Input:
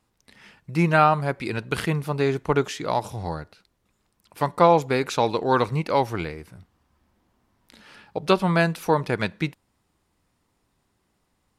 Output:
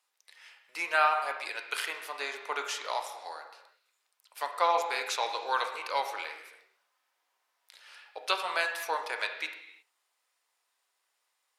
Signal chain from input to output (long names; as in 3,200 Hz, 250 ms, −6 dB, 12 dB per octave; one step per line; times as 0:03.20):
high-pass filter 490 Hz 24 dB per octave
tilt shelving filter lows −7.5 dB
on a send: convolution reverb, pre-delay 3 ms, DRR 4 dB
on the sum: level −8.5 dB